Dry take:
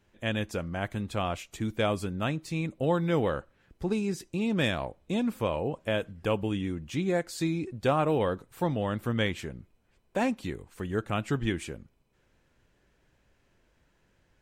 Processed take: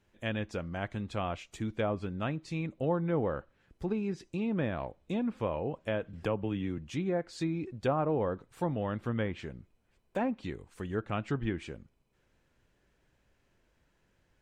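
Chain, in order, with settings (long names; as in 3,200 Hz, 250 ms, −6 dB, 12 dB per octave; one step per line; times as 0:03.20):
treble cut that deepens with the level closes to 1,300 Hz, closed at −22.5 dBFS
0:06.13–0:06.78: multiband upward and downward compressor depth 40%
level −3.5 dB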